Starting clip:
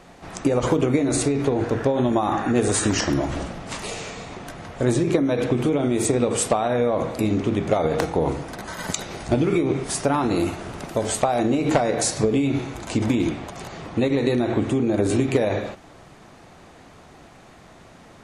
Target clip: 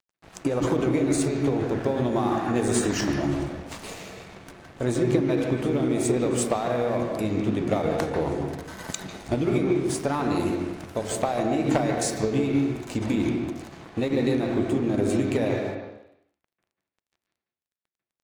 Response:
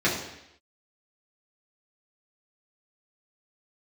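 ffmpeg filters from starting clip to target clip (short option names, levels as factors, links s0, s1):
-filter_complex "[0:a]aeval=exprs='sgn(val(0))*max(abs(val(0))-0.0126,0)':c=same,asplit=2[s0][s1];[1:a]atrim=start_sample=2205,lowpass=4000,adelay=141[s2];[s1][s2]afir=irnorm=-1:irlink=0,volume=0.119[s3];[s0][s3]amix=inputs=2:normalize=0,volume=0.596"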